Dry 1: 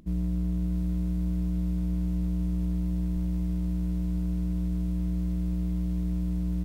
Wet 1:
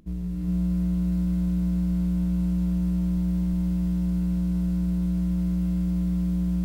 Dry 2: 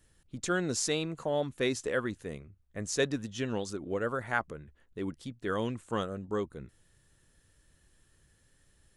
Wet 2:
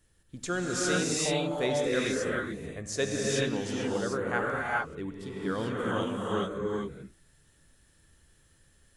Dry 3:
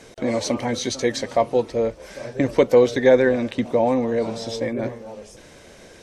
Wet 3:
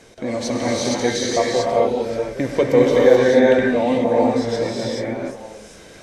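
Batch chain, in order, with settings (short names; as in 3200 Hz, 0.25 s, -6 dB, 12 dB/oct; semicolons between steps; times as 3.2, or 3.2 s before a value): non-linear reverb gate 0.46 s rising, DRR -4.5 dB; gain -2 dB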